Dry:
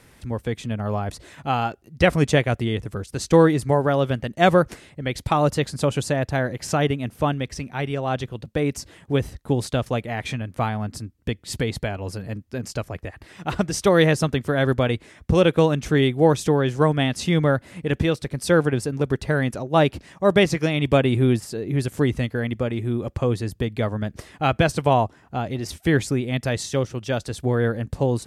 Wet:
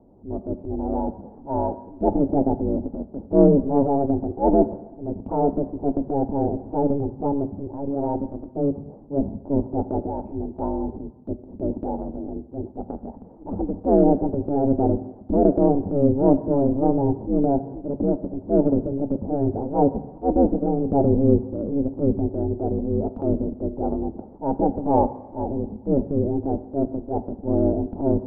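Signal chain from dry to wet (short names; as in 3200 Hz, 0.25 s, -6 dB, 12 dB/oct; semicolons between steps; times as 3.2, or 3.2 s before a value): Chebyshev low-pass 760 Hz, order 4; transient shaper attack -9 dB, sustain +5 dB; ring modulator 140 Hz; reverb RT60 1.1 s, pre-delay 3 ms, DRR 10 dB; gain -4 dB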